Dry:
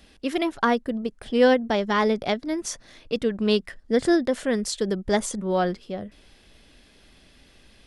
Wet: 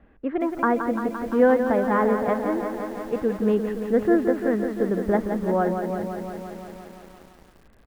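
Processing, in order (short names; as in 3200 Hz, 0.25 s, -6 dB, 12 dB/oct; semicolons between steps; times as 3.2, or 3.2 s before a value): LPF 1700 Hz 24 dB/oct; feedback echo 0.161 s, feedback 57%, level -23 dB; lo-fi delay 0.172 s, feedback 80%, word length 8-bit, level -7.5 dB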